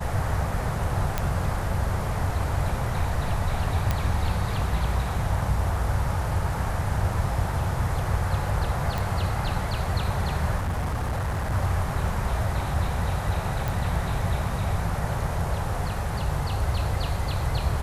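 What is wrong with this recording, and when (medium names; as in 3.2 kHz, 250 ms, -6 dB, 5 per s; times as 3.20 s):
1.18 s: pop -10 dBFS
3.91 s: pop -10 dBFS
8.98 s: pop
10.57–11.53 s: clipped -23.5 dBFS
13.68 s: pop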